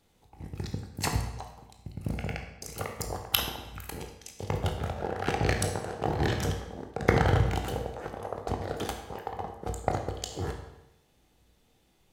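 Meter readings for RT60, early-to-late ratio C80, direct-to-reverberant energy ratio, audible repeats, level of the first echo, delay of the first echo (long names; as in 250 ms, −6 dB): 0.90 s, 8.5 dB, 3.0 dB, no echo audible, no echo audible, no echo audible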